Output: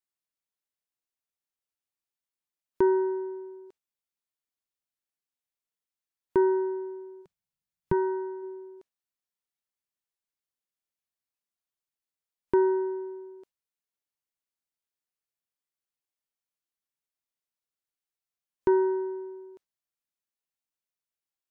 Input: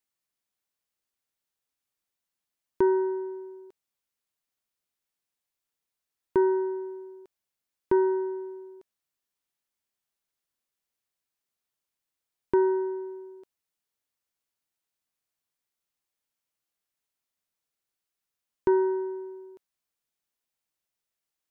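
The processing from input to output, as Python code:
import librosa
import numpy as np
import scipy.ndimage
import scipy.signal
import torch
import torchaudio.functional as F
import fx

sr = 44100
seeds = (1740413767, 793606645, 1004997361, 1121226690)

y = fx.noise_reduce_blind(x, sr, reduce_db=8)
y = fx.low_shelf_res(y, sr, hz=220.0, db=8.5, q=3.0, at=(7.21, 8.42), fade=0.02)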